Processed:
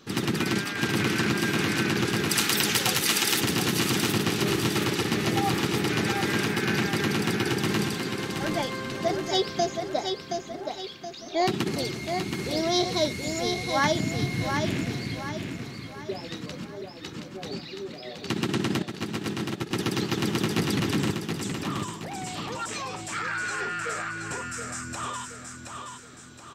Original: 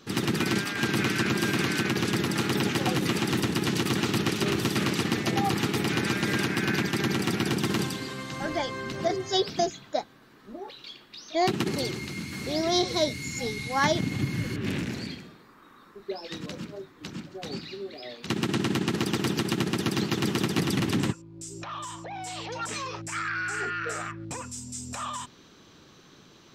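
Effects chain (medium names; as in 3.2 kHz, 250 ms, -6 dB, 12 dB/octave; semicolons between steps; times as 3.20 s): 2.29–3.41 s: tilt EQ +4 dB/octave; 18.82–19.71 s: gate -24 dBFS, range -13 dB; feedback delay 723 ms, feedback 43%, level -5.5 dB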